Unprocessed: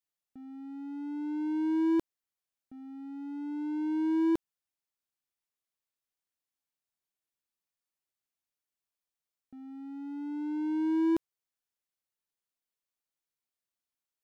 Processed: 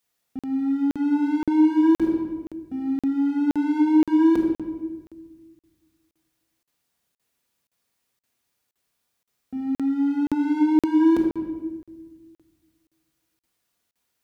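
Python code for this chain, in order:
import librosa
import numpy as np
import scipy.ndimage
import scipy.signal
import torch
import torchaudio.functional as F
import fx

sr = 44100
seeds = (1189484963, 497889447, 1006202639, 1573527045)

p1 = scipy.signal.sosfilt(scipy.signal.butter(4, 42.0, 'highpass', fs=sr, output='sos'), x)
p2 = fx.low_shelf(p1, sr, hz=220.0, db=3.0)
p3 = fx.hum_notches(p2, sr, base_hz=60, count=5)
p4 = fx.over_compress(p3, sr, threshold_db=-32.0, ratio=-0.5)
p5 = p3 + (p4 * librosa.db_to_amplitude(1.5))
p6 = fx.room_shoebox(p5, sr, seeds[0], volume_m3=1200.0, walls='mixed', distance_m=1.8)
p7 = fx.buffer_crackle(p6, sr, first_s=0.39, period_s=0.52, block=2048, kind='zero')
y = p7 * librosa.db_to_amplitude(4.0)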